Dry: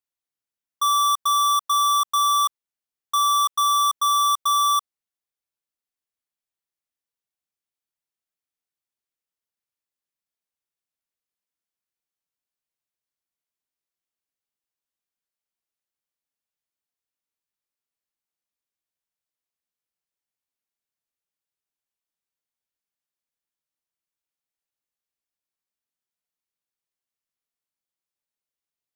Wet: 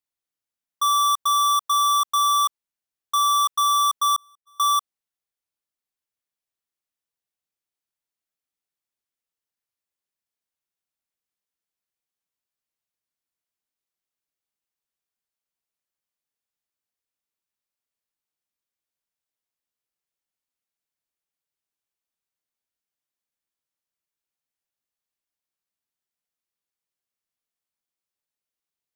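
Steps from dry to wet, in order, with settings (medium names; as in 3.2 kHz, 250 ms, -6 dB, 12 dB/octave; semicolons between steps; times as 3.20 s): 4.16–4.60 s: gate -17 dBFS, range -58 dB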